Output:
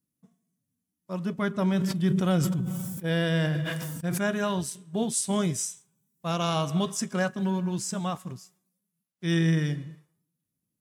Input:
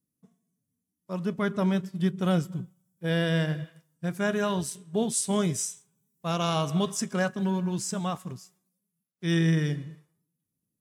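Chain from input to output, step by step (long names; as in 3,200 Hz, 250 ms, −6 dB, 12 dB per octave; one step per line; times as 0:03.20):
notch filter 430 Hz, Q 12
0:01.72–0:04.30: level that may fall only so fast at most 23 dB per second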